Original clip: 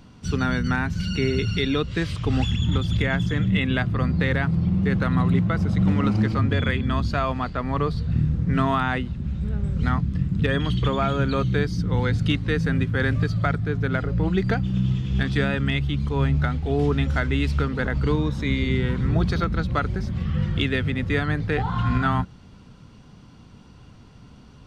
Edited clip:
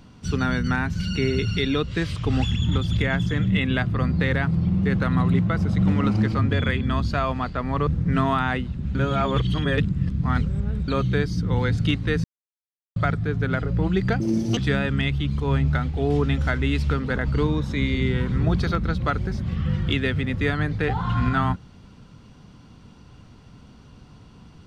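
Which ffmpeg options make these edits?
-filter_complex "[0:a]asplit=8[s0][s1][s2][s3][s4][s5][s6][s7];[s0]atrim=end=7.872[s8];[s1]atrim=start=8.278:end=9.362[s9];[s2]atrim=start=9.358:end=11.292,asetpts=PTS-STARTPTS,areverse[s10];[s3]atrim=start=11.288:end=12.65,asetpts=PTS-STARTPTS,afade=t=out:st=1.358:d=0.004:c=hsin[s11];[s4]atrim=start=12.65:end=13.37,asetpts=PTS-STARTPTS,volume=0[s12];[s5]atrim=start=13.37:end=14.614,asetpts=PTS-STARTPTS,afade=t=in:d=0.004:c=hsin[s13];[s6]atrim=start=14.61:end=15.26,asetpts=PTS-STARTPTS,asetrate=77175,aresample=44100[s14];[s7]atrim=start=15.256[s15];[s8][s9]acrossfade=d=0.004:c1=hsin:c2=hsin[s16];[s16][s10]acrossfade=d=0.004:c1=hsin:c2=hsin[s17];[s11][s12][s13]concat=n=3:v=0:a=1[s18];[s17][s18]acrossfade=d=0.004:c1=hsin:c2=hsin[s19];[s19][s14]acrossfade=d=0.004:c1=hsin:c2=hsin[s20];[s20][s15]acrossfade=d=0.004:c1=hsin:c2=hsin"

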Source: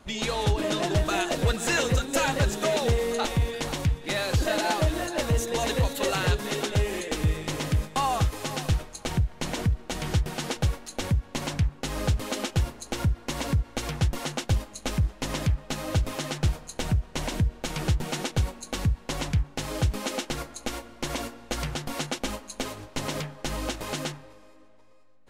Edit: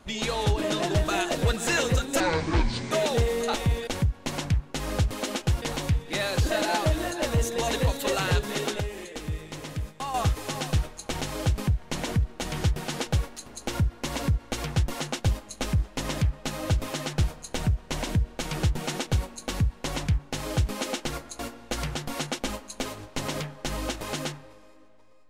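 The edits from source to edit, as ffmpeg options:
-filter_complex "[0:a]asplit=11[s0][s1][s2][s3][s4][s5][s6][s7][s8][s9][s10];[s0]atrim=end=2.204[s11];[s1]atrim=start=2.2:end=2.62,asetpts=PTS-STARTPTS,asetrate=26019,aresample=44100,atrim=end_sample=31393,asetpts=PTS-STARTPTS[s12];[s2]atrim=start=2.616:end=3.582[s13];[s3]atrim=start=10.958:end=12.712[s14];[s4]atrim=start=3.578:end=6.762[s15];[s5]atrim=start=6.758:end=8.102,asetpts=PTS-STARTPTS,volume=0.422[s16];[s6]atrim=start=8.098:end=9.172[s17];[s7]atrim=start=19.568:end=20.032[s18];[s8]atrim=start=9.168:end=10.962[s19];[s9]atrim=start=12.708:end=20.642[s20];[s10]atrim=start=21.188[s21];[s11][s12]acrossfade=d=0.004:c1=hsin:c2=hsin[s22];[s22][s13]acrossfade=d=0.004:c1=hsin:c2=hsin[s23];[s23][s14]acrossfade=d=0.004:c1=hsin:c2=hsin[s24];[s24][s15]acrossfade=d=0.004:c1=hsin:c2=hsin[s25];[s25][s16]acrossfade=d=0.004:c1=hsin:c2=hsin[s26];[s26][s17]acrossfade=d=0.004:c1=hsin:c2=hsin[s27];[s27][s18]acrossfade=d=0.004:c1=hsin:c2=hsin[s28];[s28][s19]acrossfade=d=0.004:c1=hsin:c2=hsin[s29];[s29][s20]acrossfade=d=0.004:c1=hsin:c2=hsin[s30];[s30][s21]acrossfade=d=0.004:c1=hsin:c2=hsin"

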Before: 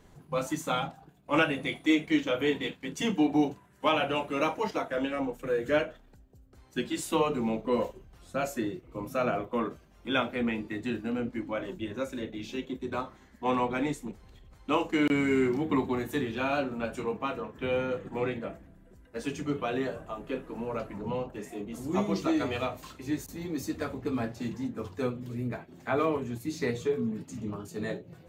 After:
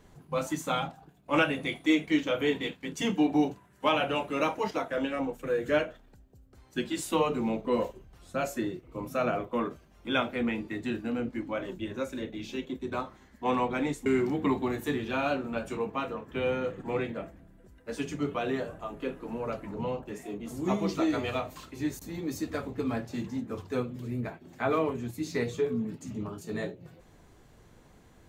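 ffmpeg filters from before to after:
-filter_complex "[0:a]asplit=2[s0][s1];[s0]atrim=end=14.062[s2];[s1]atrim=start=15.328[s3];[s2][s3]acrossfade=d=0.004:c1=hsin:c2=hsin"

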